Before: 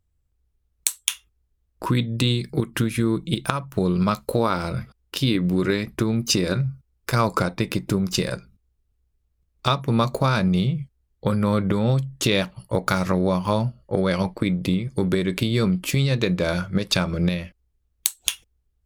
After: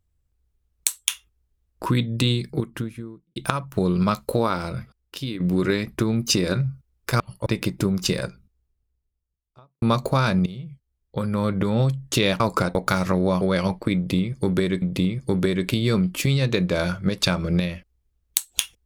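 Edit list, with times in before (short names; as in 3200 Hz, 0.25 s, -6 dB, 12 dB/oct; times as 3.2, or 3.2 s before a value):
2.26–3.36 studio fade out
4.31–5.4 fade out, to -11 dB
7.2–7.55 swap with 12.49–12.75
8.23–9.91 studio fade out
10.55–11.9 fade in, from -16.5 dB
13.41–13.96 cut
14.51–15.37 loop, 2 plays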